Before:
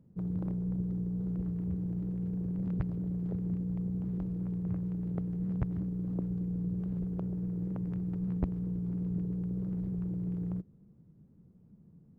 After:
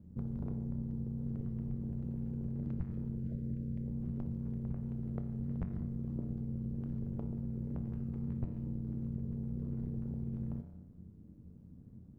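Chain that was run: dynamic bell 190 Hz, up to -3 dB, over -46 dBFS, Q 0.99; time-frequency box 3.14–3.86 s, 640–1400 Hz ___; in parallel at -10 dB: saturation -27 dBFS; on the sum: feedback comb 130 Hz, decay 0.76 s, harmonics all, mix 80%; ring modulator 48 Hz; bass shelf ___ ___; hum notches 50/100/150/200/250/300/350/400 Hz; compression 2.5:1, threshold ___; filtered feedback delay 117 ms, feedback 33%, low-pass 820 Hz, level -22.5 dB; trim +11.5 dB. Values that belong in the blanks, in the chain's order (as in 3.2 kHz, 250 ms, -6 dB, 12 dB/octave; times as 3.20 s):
-15 dB, 290 Hz, +7.5 dB, -48 dBFS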